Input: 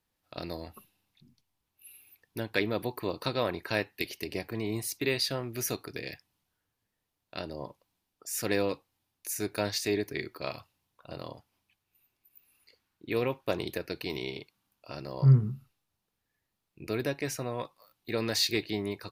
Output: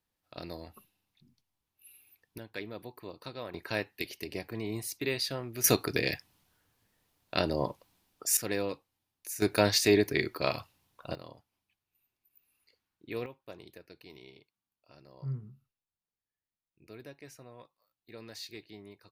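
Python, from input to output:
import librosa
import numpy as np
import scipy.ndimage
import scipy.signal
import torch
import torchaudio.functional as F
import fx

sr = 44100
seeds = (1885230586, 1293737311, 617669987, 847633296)

y = fx.gain(x, sr, db=fx.steps((0.0, -4.0), (2.38, -11.5), (3.54, -3.0), (5.64, 9.0), (8.37, -4.0), (9.42, 6.0), (11.15, -7.0), (13.26, -16.5)))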